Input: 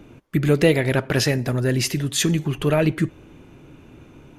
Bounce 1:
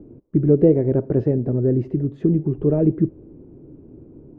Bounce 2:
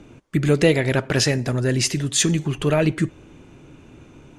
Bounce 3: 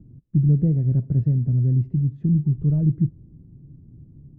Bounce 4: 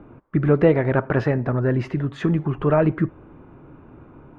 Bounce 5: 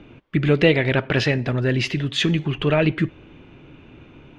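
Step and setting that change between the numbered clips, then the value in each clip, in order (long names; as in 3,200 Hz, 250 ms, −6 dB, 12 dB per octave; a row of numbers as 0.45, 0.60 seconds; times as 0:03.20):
low-pass with resonance, frequency: 400, 8,000, 150, 1,200, 3,100 Hertz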